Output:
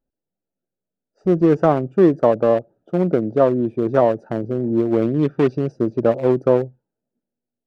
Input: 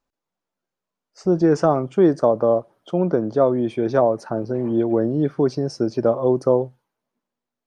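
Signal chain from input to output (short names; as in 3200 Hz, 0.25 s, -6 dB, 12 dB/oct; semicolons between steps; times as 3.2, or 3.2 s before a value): Wiener smoothing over 41 samples; 5.02–5.72 bell 2800 Hz +9.5 dB 2.3 oct; gain +2.5 dB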